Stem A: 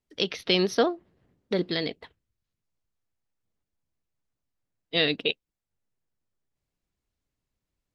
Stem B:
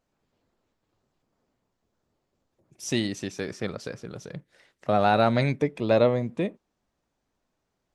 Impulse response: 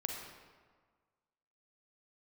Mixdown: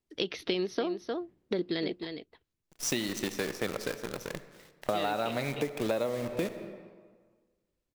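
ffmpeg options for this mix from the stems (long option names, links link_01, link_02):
-filter_complex "[0:a]acrossover=split=5300[link_01][link_02];[link_02]acompressor=threshold=-46dB:ratio=4:attack=1:release=60[link_03];[link_01][link_03]amix=inputs=2:normalize=0,equalizer=frequency=340:width=2.8:gain=7,volume=-2dB,asplit=2[link_04][link_05];[link_05]volume=-11.5dB[link_06];[1:a]highpass=frequency=300:poles=1,acrusher=bits=7:dc=4:mix=0:aa=0.000001,volume=1.5dB,asplit=2[link_07][link_08];[link_08]volume=-8dB[link_09];[2:a]atrim=start_sample=2205[link_10];[link_09][link_10]afir=irnorm=-1:irlink=0[link_11];[link_06]aecho=0:1:306:1[link_12];[link_04][link_07][link_11][link_12]amix=inputs=4:normalize=0,acompressor=threshold=-27dB:ratio=10"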